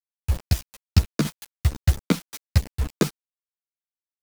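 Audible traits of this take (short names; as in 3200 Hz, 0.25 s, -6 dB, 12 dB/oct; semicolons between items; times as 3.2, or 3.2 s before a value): a quantiser's noise floor 6-bit, dither none; tremolo saw down 6.4 Hz, depth 65%; a shimmering, thickened sound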